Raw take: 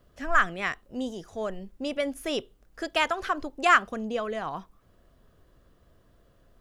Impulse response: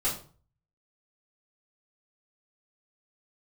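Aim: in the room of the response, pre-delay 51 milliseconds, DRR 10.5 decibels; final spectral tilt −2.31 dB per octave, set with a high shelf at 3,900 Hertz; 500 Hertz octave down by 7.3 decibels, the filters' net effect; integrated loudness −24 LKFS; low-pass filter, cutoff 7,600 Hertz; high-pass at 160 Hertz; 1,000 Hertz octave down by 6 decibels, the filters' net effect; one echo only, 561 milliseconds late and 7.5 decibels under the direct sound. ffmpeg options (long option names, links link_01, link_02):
-filter_complex "[0:a]highpass=160,lowpass=7600,equalizer=frequency=500:width_type=o:gain=-7,equalizer=frequency=1000:width_type=o:gain=-7.5,highshelf=frequency=3900:gain=6,aecho=1:1:561:0.422,asplit=2[link_01][link_02];[1:a]atrim=start_sample=2205,adelay=51[link_03];[link_02][link_03]afir=irnorm=-1:irlink=0,volume=-18dB[link_04];[link_01][link_04]amix=inputs=2:normalize=0,volume=6dB"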